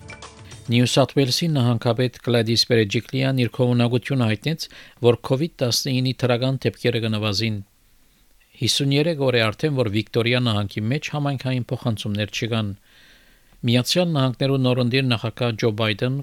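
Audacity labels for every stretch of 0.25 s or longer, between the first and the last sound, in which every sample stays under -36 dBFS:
7.620000	8.590000	silence
12.750000	13.630000	silence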